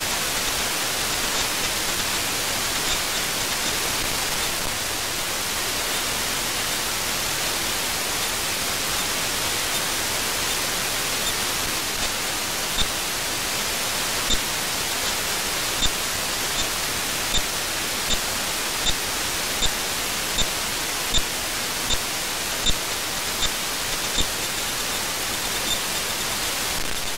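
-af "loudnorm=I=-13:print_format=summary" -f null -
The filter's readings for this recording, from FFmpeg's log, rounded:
Input Integrated:    -22.6 LUFS
Input True Peak:      -8.1 dBTP
Input LRA:             1.3 LU
Input Threshold:     -32.6 LUFS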